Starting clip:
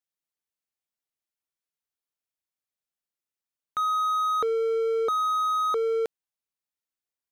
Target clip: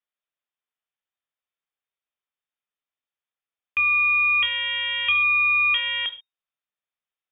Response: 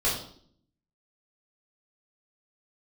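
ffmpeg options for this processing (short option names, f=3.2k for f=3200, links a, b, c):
-filter_complex "[0:a]aeval=exprs='0.1*(cos(1*acos(clip(val(0)/0.1,-1,1)))-cos(1*PI/2))+0.0355*(cos(2*acos(clip(val(0)/0.1,-1,1)))-cos(2*PI/2))+0.00708*(cos(3*acos(clip(val(0)/0.1,-1,1)))-cos(3*PI/2))+0.0178*(cos(4*acos(clip(val(0)/0.1,-1,1)))-cos(4*PI/2))+0.00282*(cos(8*acos(clip(val(0)/0.1,-1,1)))-cos(8*PI/2))':c=same,asplit=2[a][b];[1:a]atrim=start_sample=2205,atrim=end_sample=6615[c];[b][c]afir=irnorm=-1:irlink=0,volume=-19dB[d];[a][d]amix=inputs=2:normalize=0,lowpass=f=3.1k:t=q:w=0.5098,lowpass=f=3.1k:t=q:w=0.6013,lowpass=f=3.1k:t=q:w=0.9,lowpass=f=3.1k:t=q:w=2.563,afreqshift=-3700,volume=4.5dB"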